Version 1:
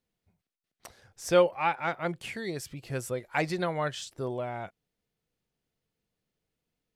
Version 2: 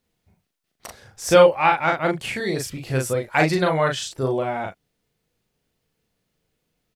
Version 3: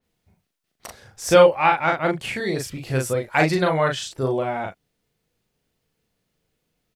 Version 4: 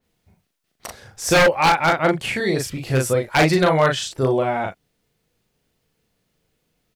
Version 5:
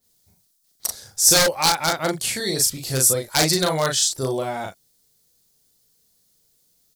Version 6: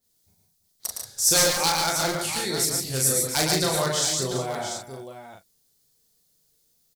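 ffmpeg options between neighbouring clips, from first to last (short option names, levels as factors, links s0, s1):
-filter_complex "[0:a]asplit=2[s0][s1];[s1]adelay=38,volume=0.708[s2];[s0][s2]amix=inputs=2:normalize=0,volume=2.66"
-af "adynamicequalizer=threshold=0.0141:dfrequency=4100:dqfactor=0.7:tfrequency=4100:tqfactor=0.7:attack=5:release=100:ratio=0.375:range=1.5:mode=cutabove:tftype=highshelf"
-af "aeval=exprs='0.251*(abs(mod(val(0)/0.251+3,4)-2)-1)':c=same,volume=1.58"
-af "aexciter=amount=6.8:drive=5:freq=3800,volume=0.531"
-af "aecho=1:1:113|144|335|690:0.596|0.447|0.224|0.335,volume=0.531"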